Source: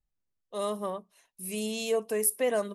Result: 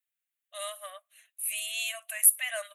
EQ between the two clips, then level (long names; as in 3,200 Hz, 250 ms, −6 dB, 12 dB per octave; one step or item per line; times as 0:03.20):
linear-phase brick-wall high-pass 570 Hz
tilt shelving filter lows −7.5 dB
phaser with its sweep stopped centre 2,200 Hz, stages 4
+2.0 dB